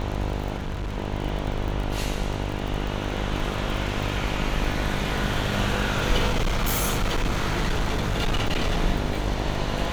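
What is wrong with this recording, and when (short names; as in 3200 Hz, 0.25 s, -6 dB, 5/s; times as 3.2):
buzz 50 Hz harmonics 20 -29 dBFS
crackle 37/s -29 dBFS
0.56–0.98 clipped -26 dBFS
6.26–8.82 clipped -19.5 dBFS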